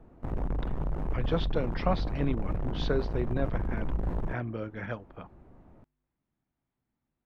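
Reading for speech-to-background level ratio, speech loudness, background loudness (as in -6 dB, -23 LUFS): 0.5 dB, -34.5 LUFS, -35.0 LUFS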